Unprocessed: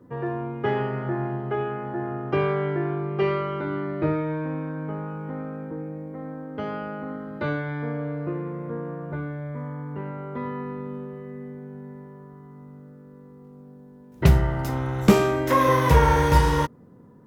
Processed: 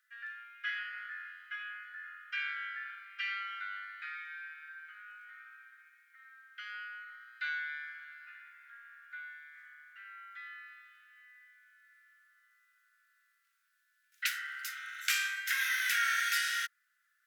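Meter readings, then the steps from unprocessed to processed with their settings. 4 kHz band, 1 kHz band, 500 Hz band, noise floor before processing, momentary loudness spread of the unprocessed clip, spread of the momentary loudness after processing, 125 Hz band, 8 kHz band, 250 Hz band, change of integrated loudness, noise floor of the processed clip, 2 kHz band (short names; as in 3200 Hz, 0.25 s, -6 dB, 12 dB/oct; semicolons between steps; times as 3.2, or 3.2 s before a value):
0.0 dB, -17.5 dB, under -40 dB, -48 dBFS, 18 LU, 22 LU, under -40 dB, n/a, under -40 dB, -10.5 dB, -76 dBFS, 0.0 dB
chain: steep high-pass 1400 Hz 96 dB/oct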